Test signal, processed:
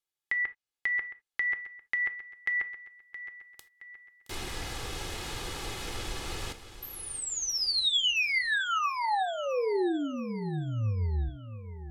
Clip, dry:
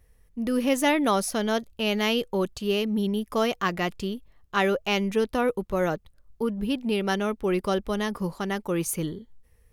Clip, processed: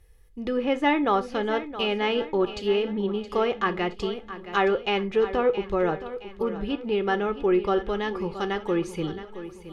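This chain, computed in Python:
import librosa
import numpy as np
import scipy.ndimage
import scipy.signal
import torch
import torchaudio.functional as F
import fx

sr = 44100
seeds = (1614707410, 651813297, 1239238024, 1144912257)

y = fx.env_lowpass_down(x, sr, base_hz=2000.0, full_db=-22.0)
y = fx.peak_eq(y, sr, hz=3400.0, db=3.5, octaves=1.0)
y = y + 0.45 * np.pad(y, (int(2.4 * sr / 1000.0), 0))[:len(y)]
y = fx.echo_feedback(y, sr, ms=670, feedback_pct=46, wet_db=-13)
y = fx.rev_gated(y, sr, seeds[0], gate_ms=100, shape='falling', drr_db=11.0)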